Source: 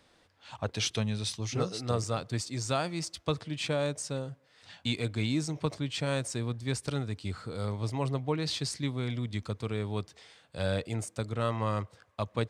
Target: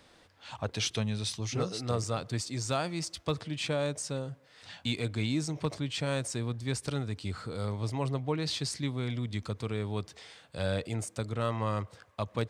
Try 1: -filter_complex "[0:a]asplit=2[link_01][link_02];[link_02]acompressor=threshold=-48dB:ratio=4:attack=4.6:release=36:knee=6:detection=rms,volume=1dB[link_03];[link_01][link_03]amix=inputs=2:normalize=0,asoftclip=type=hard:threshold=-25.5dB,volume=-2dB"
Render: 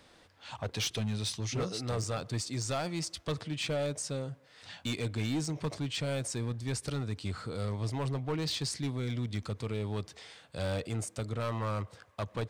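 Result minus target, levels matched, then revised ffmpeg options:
hard clipping: distortion +24 dB
-filter_complex "[0:a]asplit=2[link_01][link_02];[link_02]acompressor=threshold=-48dB:ratio=4:attack=4.6:release=36:knee=6:detection=rms,volume=1dB[link_03];[link_01][link_03]amix=inputs=2:normalize=0,asoftclip=type=hard:threshold=-15.5dB,volume=-2dB"

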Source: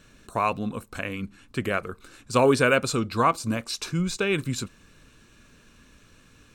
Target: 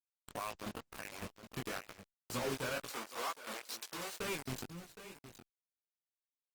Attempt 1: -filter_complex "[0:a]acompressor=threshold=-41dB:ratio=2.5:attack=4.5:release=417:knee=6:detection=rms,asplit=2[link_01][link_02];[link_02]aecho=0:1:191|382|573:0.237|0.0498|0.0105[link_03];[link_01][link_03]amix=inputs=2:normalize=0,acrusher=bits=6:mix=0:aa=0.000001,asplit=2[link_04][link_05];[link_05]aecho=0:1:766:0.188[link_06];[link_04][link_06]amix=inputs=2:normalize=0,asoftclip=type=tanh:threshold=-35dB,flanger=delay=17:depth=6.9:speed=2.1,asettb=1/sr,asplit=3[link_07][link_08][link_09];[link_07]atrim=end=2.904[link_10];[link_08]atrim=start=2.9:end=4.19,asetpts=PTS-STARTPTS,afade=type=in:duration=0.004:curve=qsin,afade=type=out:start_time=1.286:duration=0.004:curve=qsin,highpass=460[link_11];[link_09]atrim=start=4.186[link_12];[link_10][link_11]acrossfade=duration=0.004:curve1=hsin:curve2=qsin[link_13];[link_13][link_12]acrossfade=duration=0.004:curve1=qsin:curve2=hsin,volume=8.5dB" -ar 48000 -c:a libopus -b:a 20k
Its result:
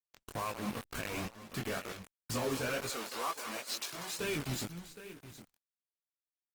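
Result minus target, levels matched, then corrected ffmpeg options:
downward compressor: peak gain reduction −5.5 dB
-filter_complex "[0:a]acompressor=threshold=-50.5dB:ratio=2.5:attack=4.5:release=417:knee=6:detection=rms,asplit=2[link_01][link_02];[link_02]aecho=0:1:191|382|573:0.237|0.0498|0.0105[link_03];[link_01][link_03]amix=inputs=2:normalize=0,acrusher=bits=6:mix=0:aa=0.000001,asplit=2[link_04][link_05];[link_05]aecho=0:1:766:0.188[link_06];[link_04][link_06]amix=inputs=2:normalize=0,asoftclip=type=tanh:threshold=-35dB,flanger=delay=17:depth=6.9:speed=2.1,asettb=1/sr,asplit=3[link_07][link_08][link_09];[link_07]atrim=end=2.904[link_10];[link_08]atrim=start=2.9:end=4.19,asetpts=PTS-STARTPTS,afade=type=in:duration=0.004:curve=qsin,afade=type=out:start_time=1.286:duration=0.004:curve=qsin,highpass=460[link_11];[link_09]atrim=start=4.186[link_12];[link_10][link_11]acrossfade=duration=0.004:curve1=hsin:curve2=qsin[link_13];[link_13][link_12]acrossfade=duration=0.004:curve1=qsin:curve2=hsin,volume=8.5dB" -ar 48000 -c:a libopus -b:a 20k

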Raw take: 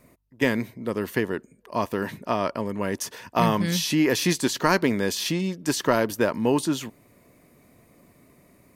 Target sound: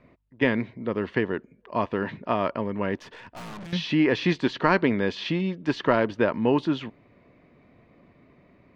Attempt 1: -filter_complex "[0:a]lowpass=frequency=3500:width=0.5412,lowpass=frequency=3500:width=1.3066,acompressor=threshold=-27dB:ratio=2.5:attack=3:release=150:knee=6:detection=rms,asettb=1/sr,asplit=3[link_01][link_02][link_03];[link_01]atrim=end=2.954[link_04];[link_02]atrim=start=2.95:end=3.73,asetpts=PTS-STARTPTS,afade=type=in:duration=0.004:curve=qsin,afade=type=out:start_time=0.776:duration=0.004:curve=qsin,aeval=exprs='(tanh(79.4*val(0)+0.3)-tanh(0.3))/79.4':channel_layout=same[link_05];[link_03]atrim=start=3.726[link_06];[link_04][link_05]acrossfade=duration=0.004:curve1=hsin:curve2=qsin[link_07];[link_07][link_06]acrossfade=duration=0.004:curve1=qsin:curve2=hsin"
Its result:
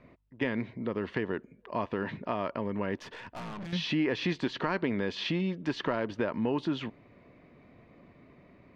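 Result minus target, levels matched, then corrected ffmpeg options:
downward compressor: peak gain reduction +11 dB
-filter_complex "[0:a]lowpass=frequency=3500:width=0.5412,lowpass=frequency=3500:width=1.3066,asettb=1/sr,asplit=3[link_01][link_02][link_03];[link_01]atrim=end=2.954[link_04];[link_02]atrim=start=2.95:end=3.73,asetpts=PTS-STARTPTS,afade=type=in:duration=0.004:curve=qsin,afade=type=out:start_time=0.776:duration=0.004:curve=qsin,aeval=exprs='(tanh(79.4*val(0)+0.3)-tanh(0.3))/79.4':channel_layout=same[link_05];[link_03]atrim=start=3.726[link_06];[link_04][link_05]acrossfade=duration=0.004:curve1=hsin:curve2=qsin[link_07];[link_07][link_06]acrossfade=duration=0.004:curve1=qsin:curve2=hsin"

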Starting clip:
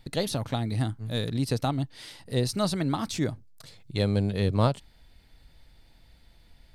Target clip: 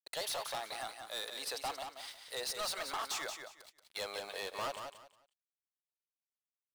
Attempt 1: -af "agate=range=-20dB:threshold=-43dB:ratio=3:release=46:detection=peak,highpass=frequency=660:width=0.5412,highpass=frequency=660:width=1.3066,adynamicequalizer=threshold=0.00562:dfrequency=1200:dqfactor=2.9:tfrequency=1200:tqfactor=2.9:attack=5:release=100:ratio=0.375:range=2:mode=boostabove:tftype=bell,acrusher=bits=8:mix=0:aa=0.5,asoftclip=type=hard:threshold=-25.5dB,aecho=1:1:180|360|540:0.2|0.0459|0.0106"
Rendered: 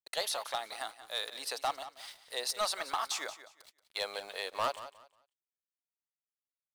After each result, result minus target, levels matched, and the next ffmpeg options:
echo-to-direct −7 dB; hard clipping: distortion −7 dB
-af "agate=range=-20dB:threshold=-43dB:ratio=3:release=46:detection=peak,highpass=frequency=660:width=0.5412,highpass=frequency=660:width=1.3066,adynamicequalizer=threshold=0.00562:dfrequency=1200:dqfactor=2.9:tfrequency=1200:tqfactor=2.9:attack=5:release=100:ratio=0.375:range=2:mode=boostabove:tftype=bell,acrusher=bits=8:mix=0:aa=0.5,asoftclip=type=hard:threshold=-25.5dB,aecho=1:1:180|360|540:0.447|0.103|0.0236"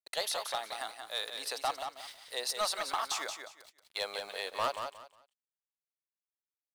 hard clipping: distortion −7 dB
-af "agate=range=-20dB:threshold=-43dB:ratio=3:release=46:detection=peak,highpass=frequency=660:width=0.5412,highpass=frequency=660:width=1.3066,adynamicequalizer=threshold=0.00562:dfrequency=1200:dqfactor=2.9:tfrequency=1200:tqfactor=2.9:attack=5:release=100:ratio=0.375:range=2:mode=boostabove:tftype=bell,acrusher=bits=8:mix=0:aa=0.5,asoftclip=type=hard:threshold=-35dB,aecho=1:1:180|360|540:0.447|0.103|0.0236"

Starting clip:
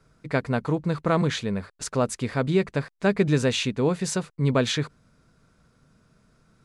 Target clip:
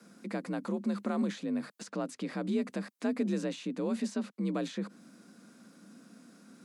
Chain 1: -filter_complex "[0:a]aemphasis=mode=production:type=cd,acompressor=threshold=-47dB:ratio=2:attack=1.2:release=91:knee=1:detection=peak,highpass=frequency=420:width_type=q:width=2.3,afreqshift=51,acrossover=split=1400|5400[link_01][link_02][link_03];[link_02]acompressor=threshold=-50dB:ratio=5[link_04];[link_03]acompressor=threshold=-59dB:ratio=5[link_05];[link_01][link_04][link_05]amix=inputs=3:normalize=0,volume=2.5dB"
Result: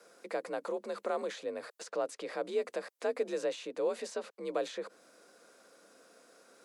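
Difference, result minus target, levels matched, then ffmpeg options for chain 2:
125 Hz band −18.5 dB
-filter_complex "[0:a]aemphasis=mode=production:type=cd,acompressor=threshold=-47dB:ratio=2:attack=1.2:release=91:knee=1:detection=peak,highpass=frequency=170:width_type=q:width=2.3,afreqshift=51,acrossover=split=1400|5400[link_01][link_02][link_03];[link_02]acompressor=threshold=-50dB:ratio=5[link_04];[link_03]acompressor=threshold=-59dB:ratio=5[link_05];[link_01][link_04][link_05]amix=inputs=3:normalize=0,volume=2.5dB"

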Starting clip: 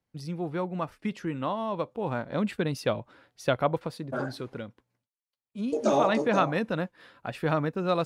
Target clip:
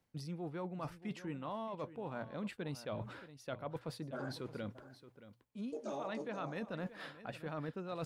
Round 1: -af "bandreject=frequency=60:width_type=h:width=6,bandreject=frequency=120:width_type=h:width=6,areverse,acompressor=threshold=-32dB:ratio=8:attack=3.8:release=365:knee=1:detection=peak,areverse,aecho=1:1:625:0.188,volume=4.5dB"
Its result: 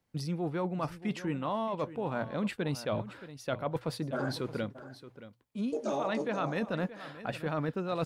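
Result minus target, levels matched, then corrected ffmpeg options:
downward compressor: peak gain reduction −9 dB
-af "bandreject=frequency=60:width_type=h:width=6,bandreject=frequency=120:width_type=h:width=6,areverse,acompressor=threshold=-42.5dB:ratio=8:attack=3.8:release=365:knee=1:detection=peak,areverse,aecho=1:1:625:0.188,volume=4.5dB"

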